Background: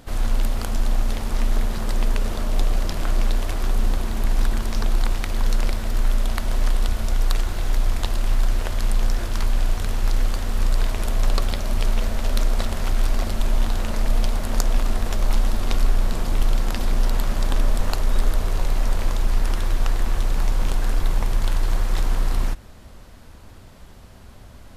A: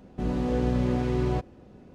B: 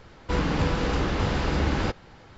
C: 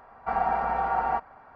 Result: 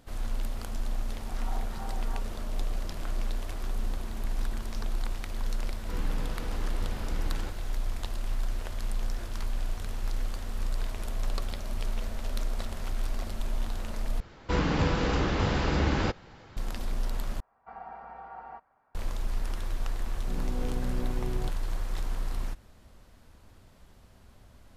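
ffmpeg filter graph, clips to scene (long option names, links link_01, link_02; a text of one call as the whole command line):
ffmpeg -i bed.wav -i cue0.wav -i cue1.wav -i cue2.wav -filter_complex "[3:a]asplit=2[link_01][link_02];[2:a]asplit=2[link_03][link_04];[0:a]volume=-11dB[link_05];[link_01]asplit=2[link_06][link_07];[link_07]afreqshift=-3[link_08];[link_06][link_08]amix=inputs=2:normalize=1[link_09];[link_05]asplit=3[link_10][link_11][link_12];[link_10]atrim=end=14.204[link_13];[link_04]atrim=end=2.37,asetpts=PTS-STARTPTS,volume=-1.5dB[link_14];[link_11]atrim=start=16.566:end=17.404[link_15];[link_02]atrim=end=1.55,asetpts=PTS-STARTPTS,volume=-18dB[link_16];[link_12]atrim=start=18.946[link_17];[link_09]atrim=end=1.55,asetpts=PTS-STARTPTS,volume=-16dB,afade=type=in:duration=0.004:curve=hsin,afade=type=out:start_time=1.546:duration=0.004:curve=hsin,adelay=1010[link_18];[link_03]atrim=end=2.37,asetpts=PTS-STARTPTS,volume=-15dB,afade=type=in:duration=0.004:curve=hsin,afade=type=out:start_time=2.366:duration=0.004:curve=hsin,adelay=5590[link_19];[1:a]atrim=end=1.94,asetpts=PTS-STARTPTS,volume=-10.5dB,afade=type=in:duration=0.004:curve=hsin,afade=type=out:start_time=1.936:duration=0.004:curve=hsin,adelay=20090[link_20];[link_13][link_14]acrossfade=duration=0.004:curve1=hsin:curve2=hsin[link_21];[link_21][link_15]acrossfade=duration=0.004:curve1=hsin:curve2=hsin[link_22];[link_22][link_16]acrossfade=duration=0.004:curve1=hsin:curve2=hsin[link_23];[link_23][link_17]acrossfade=duration=0.004:curve1=hsin:curve2=hsin[link_24];[link_24][link_18][link_19][link_20]amix=inputs=4:normalize=0" out.wav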